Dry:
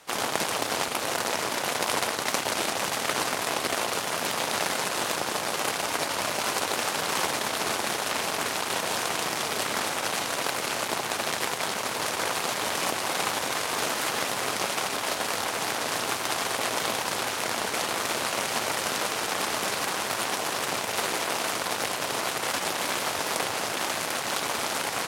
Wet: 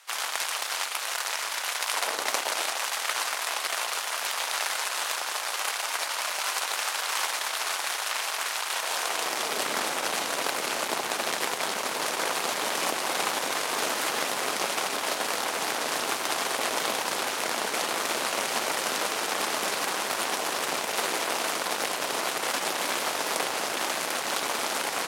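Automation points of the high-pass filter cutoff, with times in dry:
0:01.91 1,100 Hz
0:02.15 380 Hz
0:02.86 900 Hz
0:08.72 900 Hz
0:09.64 220 Hz

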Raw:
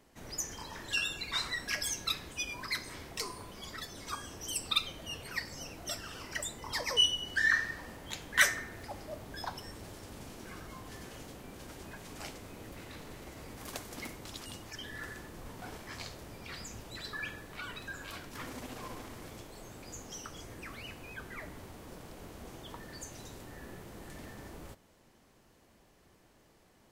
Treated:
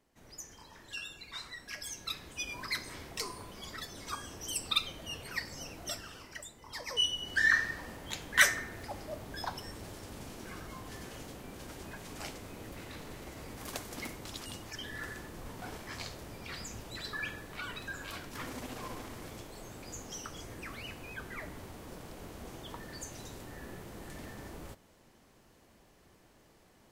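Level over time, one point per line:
0:01.64 −9.5 dB
0:02.57 0 dB
0:05.89 0 dB
0:06.54 −10.5 dB
0:07.39 +1.5 dB

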